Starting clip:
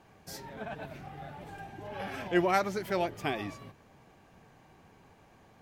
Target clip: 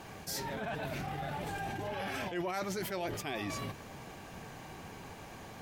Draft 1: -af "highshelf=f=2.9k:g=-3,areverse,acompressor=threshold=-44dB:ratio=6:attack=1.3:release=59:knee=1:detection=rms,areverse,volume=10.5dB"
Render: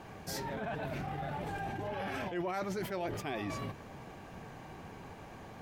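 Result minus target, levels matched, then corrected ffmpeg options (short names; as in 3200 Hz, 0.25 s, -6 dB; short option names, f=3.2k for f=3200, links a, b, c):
8000 Hz band -5.0 dB
-af "highshelf=f=2.9k:g=6.5,areverse,acompressor=threshold=-44dB:ratio=6:attack=1.3:release=59:knee=1:detection=rms,areverse,volume=10.5dB"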